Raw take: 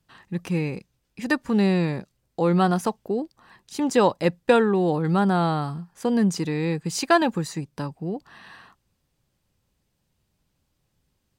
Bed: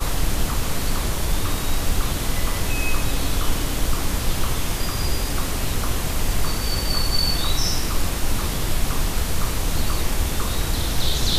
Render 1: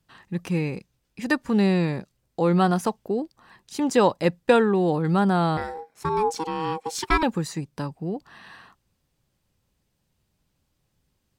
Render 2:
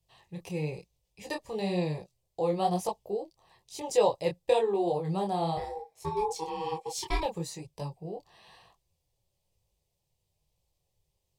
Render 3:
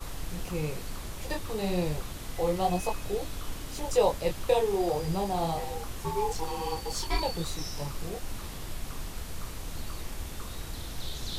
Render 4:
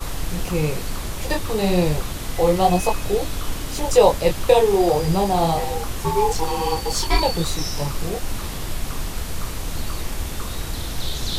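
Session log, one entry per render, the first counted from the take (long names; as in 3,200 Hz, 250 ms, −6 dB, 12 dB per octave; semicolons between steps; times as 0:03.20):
0:05.57–0:07.23: ring modulation 640 Hz
phaser with its sweep stopped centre 600 Hz, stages 4; micro pitch shift up and down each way 36 cents
mix in bed −15.5 dB
level +10.5 dB; brickwall limiter −2 dBFS, peak gain reduction 1 dB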